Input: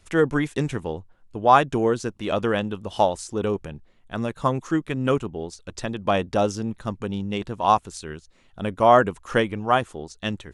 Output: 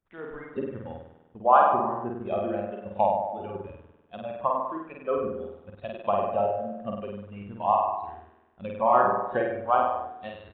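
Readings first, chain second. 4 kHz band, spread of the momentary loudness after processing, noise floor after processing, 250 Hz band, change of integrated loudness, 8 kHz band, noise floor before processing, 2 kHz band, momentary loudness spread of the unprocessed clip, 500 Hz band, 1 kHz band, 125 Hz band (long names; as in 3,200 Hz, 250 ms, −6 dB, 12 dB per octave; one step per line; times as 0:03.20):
below −15 dB, 19 LU, −61 dBFS, −10.0 dB, −3.0 dB, below −40 dB, −56 dBFS, −9.5 dB, 17 LU, −4.0 dB, −1.5 dB, −13.0 dB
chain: running median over 15 samples
treble cut that deepens with the level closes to 1,600 Hz, closed at −20 dBFS
low-shelf EQ 66 Hz −10 dB
harmonic and percussive parts rebalanced harmonic −13 dB
on a send: flutter between parallel walls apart 8.5 metres, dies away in 1.3 s
on the sum: downsampling to 8,000 Hz
noise reduction from a noise print of the clip's start 13 dB
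level −2 dB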